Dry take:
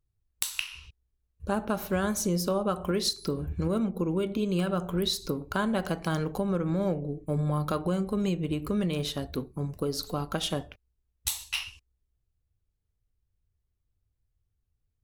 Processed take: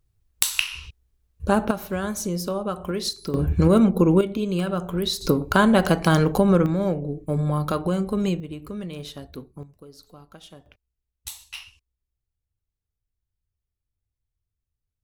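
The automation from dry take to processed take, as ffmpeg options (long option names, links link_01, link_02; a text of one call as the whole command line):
ffmpeg -i in.wav -af "asetnsamples=nb_out_samples=441:pad=0,asendcmd='1.71 volume volume 0.5dB;3.34 volume volume 11.5dB;4.21 volume volume 3dB;5.21 volume volume 11dB;6.66 volume volume 4.5dB;8.4 volume volume -5dB;9.63 volume volume -15.5dB;10.66 volume volume -6dB',volume=9dB" out.wav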